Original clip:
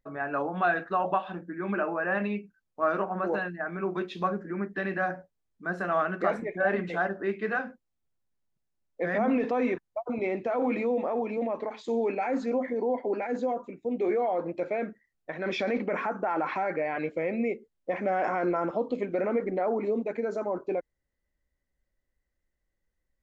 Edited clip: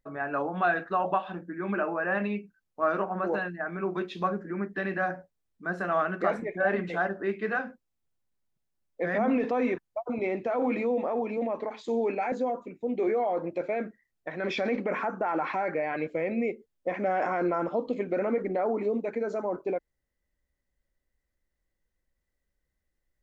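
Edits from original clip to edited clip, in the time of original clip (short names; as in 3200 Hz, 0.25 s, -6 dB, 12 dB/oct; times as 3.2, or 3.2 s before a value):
12.32–13.34 cut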